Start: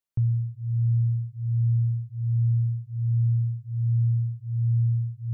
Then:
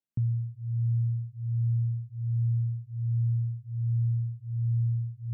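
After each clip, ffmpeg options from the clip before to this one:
-af "equalizer=f=220:t=o:w=1.1:g=15,volume=0.376"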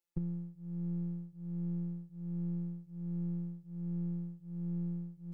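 -af "afftfilt=real='hypot(re,im)*cos(PI*b)':imag='0':win_size=1024:overlap=0.75,aeval=exprs='0.0501*(cos(1*acos(clip(val(0)/0.0501,-1,1)))-cos(1*PI/2))+0.00251*(cos(2*acos(clip(val(0)/0.0501,-1,1)))-cos(2*PI/2))':c=same,aecho=1:1:2.3:0.61,volume=1.5"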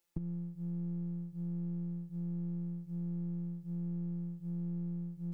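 -af "acompressor=threshold=0.00501:ratio=6,volume=2.99"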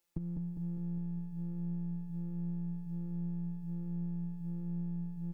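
-af "aecho=1:1:202|404|606|808|1010|1212|1414|1616:0.562|0.326|0.189|0.11|0.0636|0.0369|0.0214|0.0124"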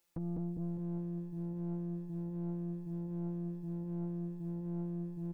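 -af "aeval=exprs='(tanh(112*val(0)+0.65)-tanh(0.65))/112':c=same,volume=2.24"

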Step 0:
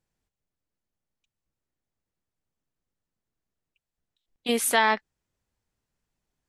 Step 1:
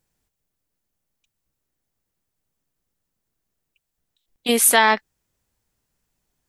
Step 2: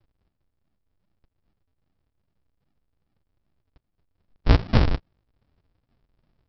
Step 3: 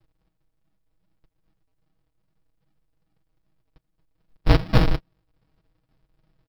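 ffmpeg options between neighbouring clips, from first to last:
-af "highshelf=f=8000:g=9.5,volume=1.88"
-af "acompressor=threshold=0.1:ratio=6,aresample=11025,acrusher=samples=42:mix=1:aa=0.000001:lfo=1:lforange=42:lforate=2.5,aresample=44100,volume=2.51"
-af "acrusher=bits=8:mode=log:mix=0:aa=0.000001,aecho=1:1:6.3:0.74"

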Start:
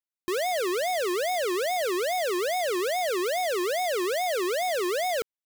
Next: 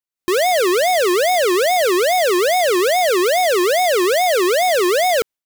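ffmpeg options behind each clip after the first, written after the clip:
-af "dynaudnorm=f=140:g=3:m=3.76"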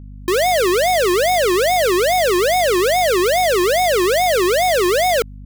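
-af "aeval=exprs='val(0)+0.02*(sin(2*PI*50*n/s)+sin(2*PI*2*50*n/s)/2+sin(2*PI*3*50*n/s)/3+sin(2*PI*4*50*n/s)/4+sin(2*PI*5*50*n/s)/5)':c=same"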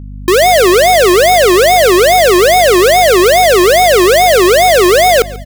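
-af "aecho=1:1:140|280|420:0.1|0.043|0.0185,volume=2.66"

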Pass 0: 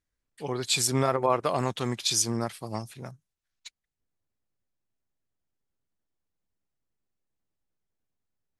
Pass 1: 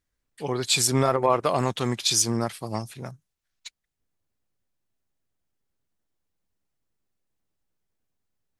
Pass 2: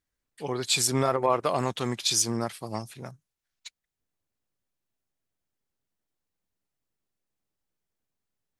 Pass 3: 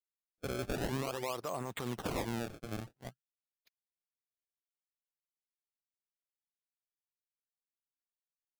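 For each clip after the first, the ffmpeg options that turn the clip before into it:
-af "acontrast=89,volume=0.668"
-af "lowshelf=f=120:g=-4.5,volume=0.75"
-af "agate=range=0.02:threshold=0.0126:ratio=16:detection=peak,acrusher=samples=26:mix=1:aa=0.000001:lfo=1:lforange=41.6:lforate=0.47,alimiter=limit=0.0708:level=0:latency=1:release=88,volume=0.562"

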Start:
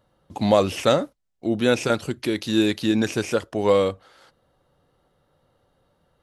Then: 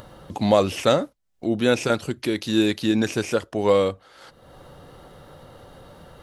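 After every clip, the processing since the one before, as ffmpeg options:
-af "acompressor=mode=upward:threshold=0.0398:ratio=2.5"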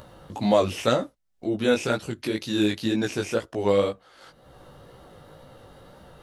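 -af "flanger=delay=15:depth=5.7:speed=2"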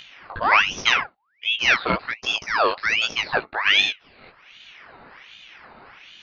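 -af "aresample=8000,aresample=44100,aeval=exprs='val(0)*sin(2*PI*1900*n/s+1900*0.6/1.3*sin(2*PI*1.3*n/s))':c=same,volume=1.88"

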